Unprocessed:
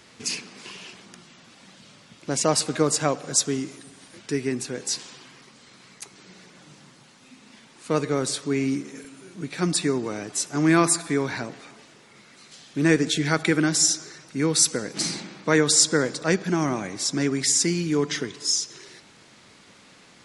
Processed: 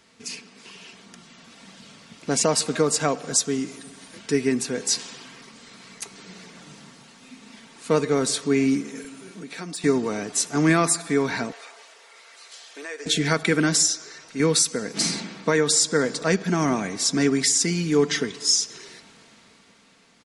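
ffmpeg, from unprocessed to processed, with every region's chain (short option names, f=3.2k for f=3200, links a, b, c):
-filter_complex "[0:a]asettb=1/sr,asplit=3[a][b][c];[a]atrim=end=9.314[d];[b]atrim=start=9.31:end=9.84,asetpts=PTS-STARTPTS,afade=t=in:d=0.004:c=qsin,afade=t=out:st=0.526:d=0.004:c=qsin,highpass=220,asoftclip=type=hard:threshold=-14dB,acompressor=threshold=-37dB:ratio=3:attack=3.2:release=140:knee=1:detection=peak[e];[c]atrim=start=9.836[f];[d][e]acrossfade=d=0.004:c1=hsin:c2=qsin[g];[g][f]acrossfade=d=0.004:c1=qsin:c2=hsin,asettb=1/sr,asplit=3[h][i][j];[h]atrim=end=11.524[k];[i]atrim=start=11.52:end=13.06,asetpts=PTS-STARTPTS,afade=t=in:d=0.004:c=qsin,afade=t=out:st=1.536:d=0.004:c=qsin,highpass=f=490:w=0.5412,highpass=f=490:w=1.3066,acompressor=threshold=-40dB:ratio=3:attack=3.2:release=140:knee=1:detection=peak[l];[j]atrim=start=13.056[m];[k][l]acrossfade=d=0.004:c1=hsin:c2=qsin[n];[n][m]acrossfade=d=0.004:c1=qsin:c2=hsin,asettb=1/sr,asplit=3[o][p][q];[o]atrim=end=13.884[r];[p]atrim=start=13.88:end=14.4,asetpts=PTS-STARTPTS,afade=t=in:d=0.004:c=qsin,afade=t=out:st=0.516:d=0.004:c=qsin,lowpass=8.1k,equalizer=f=180:t=o:w=1.3:g=-10.5[s];[q]atrim=start=14.396[t];[r][s]acrossfade=d=0.004:c1=hsin:c2=qsin[u];[u][t]acrossfade=d=0.004:c1=qsin:c2=hsin,aecho=1:1:4.4:0.39,alimiter=limit=-11.5dB:level=0:latency=1:release=405,dynaudnorm=f=110:g=21:m=11.5dB,volume=-6.5dB"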